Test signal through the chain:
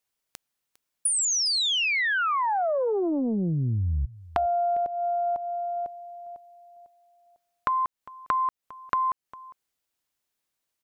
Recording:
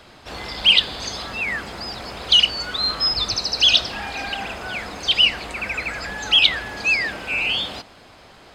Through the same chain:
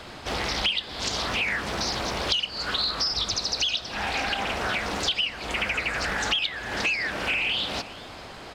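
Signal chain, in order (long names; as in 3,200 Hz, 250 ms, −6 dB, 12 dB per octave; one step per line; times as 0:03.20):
downward compressor 12 to 1, threshold −29 dBFS
on a send: single-tap delay 404 ms −20 dB
on the sum: highs frequency-modulated by the lows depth 0.57 ms
level +5.5 dB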